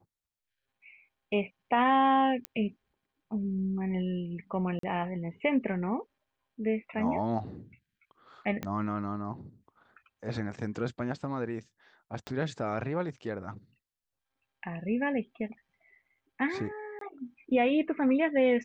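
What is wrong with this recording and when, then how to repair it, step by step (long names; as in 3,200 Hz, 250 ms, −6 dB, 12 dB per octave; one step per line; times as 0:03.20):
0:02.45: click −18 dBFS
0:04.79–0:04.83: drop-out 43 ms
0:08.63: click −20 dBFS
0:12.27: click −24 dBFS
0:16.99–0:17.01: drop-out 23 ms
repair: click removal
repair the gap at 0:04.79, 43 ms
repair the gap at 0:16.99, 23 ms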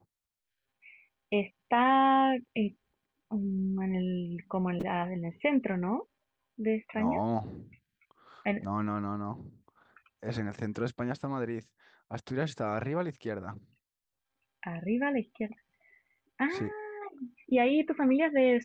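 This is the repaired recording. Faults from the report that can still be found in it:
0:08.63: click
0:12.27: click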